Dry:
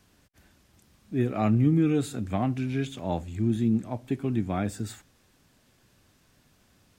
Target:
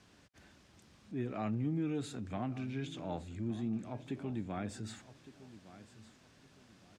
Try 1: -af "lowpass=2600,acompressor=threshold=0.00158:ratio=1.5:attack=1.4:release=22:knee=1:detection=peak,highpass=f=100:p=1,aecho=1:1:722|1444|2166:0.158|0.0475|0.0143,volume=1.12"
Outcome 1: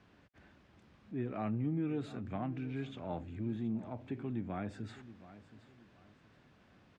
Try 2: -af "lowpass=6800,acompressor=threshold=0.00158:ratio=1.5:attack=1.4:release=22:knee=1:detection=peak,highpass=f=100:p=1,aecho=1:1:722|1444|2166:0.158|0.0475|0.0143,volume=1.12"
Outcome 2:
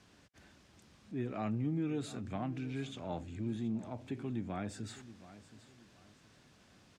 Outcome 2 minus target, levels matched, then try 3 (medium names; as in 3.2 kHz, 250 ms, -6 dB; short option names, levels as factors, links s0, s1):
echo 440 ms early
-af "lowpass=6800,acompressor=threshold=0.00158:ratio=1.5:attack=1.4:release=22:knee=1:detection=peak,highpass=f=100:p=1,aecho=1:1:1162|2324|3486:0.158|0.0475|0.0143,volume=1.12"